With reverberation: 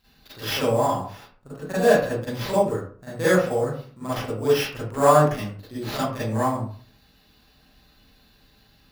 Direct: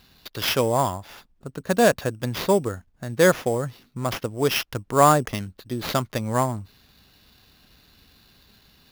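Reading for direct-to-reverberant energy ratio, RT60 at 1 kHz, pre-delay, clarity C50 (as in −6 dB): −12.0 dB, 0.45 s, 37 ms, −1.0 dB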